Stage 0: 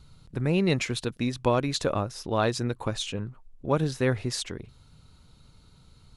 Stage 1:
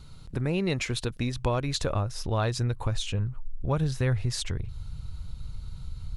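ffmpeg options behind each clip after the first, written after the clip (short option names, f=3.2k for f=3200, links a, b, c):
-af "asubboost=boost=9:cutoff=97,acompressor=threshold=-35dB:ratio=2,volume=5dB"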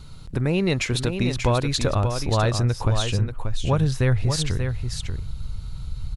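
-af "aecho=1:1:585:0.447,volume=5.5dB"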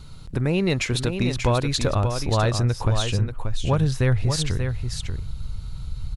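-af "volume=11.5dB,asoftclip=hard,volume=-11.5dB"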